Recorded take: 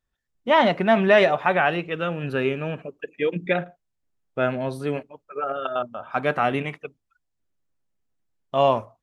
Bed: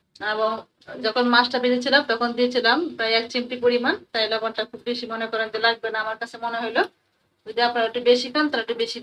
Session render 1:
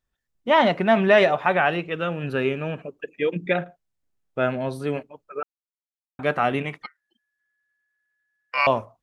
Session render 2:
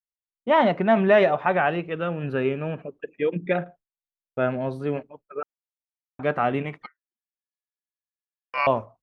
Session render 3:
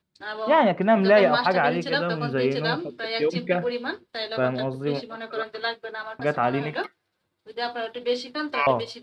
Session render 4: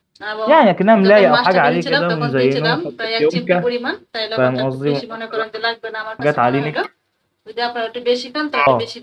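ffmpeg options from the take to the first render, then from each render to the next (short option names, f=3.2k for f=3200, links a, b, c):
-filter_complex "[0:a]asettb=1/sr,asplit=3[a][b][c];[a]atrim=end=6.824[d];[b]atrim=start=6.82:end=8.67,asetpts=PTS-STARTPTS,afade=t=in:d=0.004:c=qsin,afade=t=out:st=1.846:d=0.004:c=qsin,aeval=exprs='val(0)*sin(2*PI*1700*n/s)':c=same[e];[c]atrim=start=8.666[f];[d][e]acrossfade=d=0.004:c1=hsin:c2=qsin[g];[g][f]acrossfade=d=0.004:c1=qsin:c2=hsin,asplit=3[h][i][j];[h]atrim=end=5.43,asetpts=PTS-STARTPTS,afade=t=out:st=5.426:d=0.004:c=hsin[k];[i]atrim=start=5.43:end=6.19,asetpts=PTS-STARTPTS,volume=0[l];[j]atrim=start=6.19,asetpts=PTS-STARTPTS,afade=t=in:d=0.004:c=hsin[m];[k][l][m]concat=n=3:v=0:a=1"
-af "lowpass=f=1.6k:p=1,agate=range=-33dB:threshold=-42dB:ratio=3:detection=peak"
-filter_complex "[1:a]volume=-8.5dB[a];[0:a][a]amix=inputs=2:normalize=0"
-af "volume=8.5dB,alimiter=limit=-1dB:level=0:latency=1"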